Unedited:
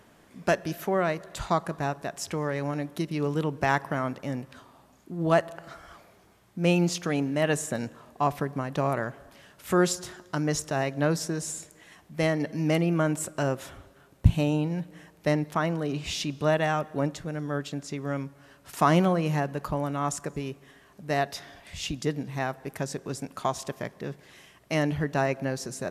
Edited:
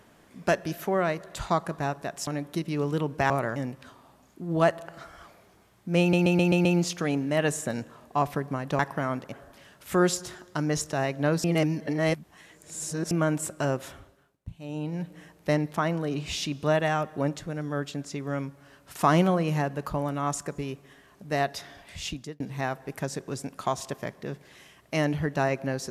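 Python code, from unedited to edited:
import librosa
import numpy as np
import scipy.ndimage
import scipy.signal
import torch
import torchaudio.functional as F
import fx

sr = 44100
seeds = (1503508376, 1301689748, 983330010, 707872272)

y = fx.edit(x, sr, fx.cut(start_s=2.27, length_s=0.43),
    fx.swap(start_s=3.73, length_s=0.53, other_s=8.84, other_length_s=0.26),
    fx.stutter(start_s=6.7, slice_s=0.13, count=6),
    fx.reverse_span(start_s=11.22, length_s=1.67),
    fx.fade_down_up(start_s=13.67, length_s=1.19, db=-22.0, fade_s=0.49),
    fx.fade_out_span(start_s=21.81, length_s=0.37), tone=tone)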